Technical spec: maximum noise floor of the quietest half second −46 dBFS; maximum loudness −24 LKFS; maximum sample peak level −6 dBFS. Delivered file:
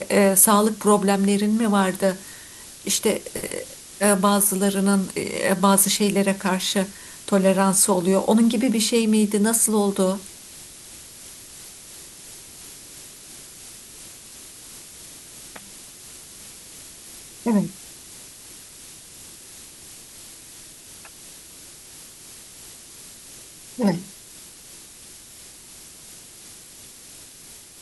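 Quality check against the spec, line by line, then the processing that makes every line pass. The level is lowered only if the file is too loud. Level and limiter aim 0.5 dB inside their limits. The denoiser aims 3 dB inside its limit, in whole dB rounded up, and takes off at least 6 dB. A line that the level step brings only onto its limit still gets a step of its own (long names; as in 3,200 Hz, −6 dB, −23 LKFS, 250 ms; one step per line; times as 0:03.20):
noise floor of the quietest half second −44 dBFS: out of spec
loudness −20.0 LKFS: out of spec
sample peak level −2.5 dBFS: out of spec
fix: level −4.5 dB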